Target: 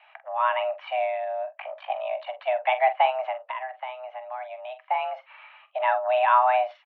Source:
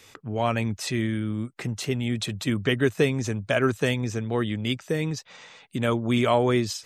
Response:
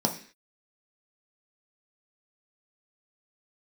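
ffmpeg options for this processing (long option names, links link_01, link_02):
-filter_complex "[0:a]asplit=2[link_01][link_02];[1:a]atrim=start_sample=2205,afade=type=out:start_time=0.13:duration=0.01,atrim=end_sample=6174[link_03];[link_02][link_03]afir=irnorm=-1:irlink=0,volume=-22dB[link_04];[link_01][link_04]amix=inputs=2:normalize=0,asettb=1/sr,asplit=3[link_05][link_06][link_07];[link_05]atrim=end=1.454[link_08];[link_06]atrim=start=1.45:end=2.27,asetpts=PTS-STARTPTS,afade=type=in:duration=0.004:curve=qsin,afade=type=out:start_time=0.816:duration=0.004:curve=qsin,aeval=exprs='val(0)*sin(2*PI*26*n/s)':channel_layout=same[link_09];[link_07]atrim=start=2.266[link_10];[link_08][link_09]acrossfade=duration=0.004:curve1=hsin:curve2=qsin[link_11];[link_11][link_10]acrossfade=duration=0.004:curve1=qsin:curve2=hsin,asplit=3[link_12][link_13][link_14];[link_12]afade=type=out:start_time=3.36:duration=0.02[link_15];[link_13]acompressor=threshold=-32dB:ratio=4,afade=type=in:start_time=3.36:duration=0.02,afade=type=out:start_time=4.89:duration=0.02[link_16];[link_14]afade=type=in:start_time=4.89:duration=0.02[link_17];[link_15][link_16][link_17]amix=inputs=3:normalize=0,highpass=frequency=240:width_type=q:width=0.5412,highpass=frequency=240:width_type=q:width=1.307,lowpass=frequency=2400:width_type=q:width=0.5176,lowpass=frequency=2400:width_type=q:width=0.7071,lowpass=frequency=2400:width_type=q:width=1.932,afreqshift=380,asplit=2[link_18][link_19];[link_19]adelay=46,volume=-12dB[link_20];[link_18][link_20]amix=inputs=2:normalize=0"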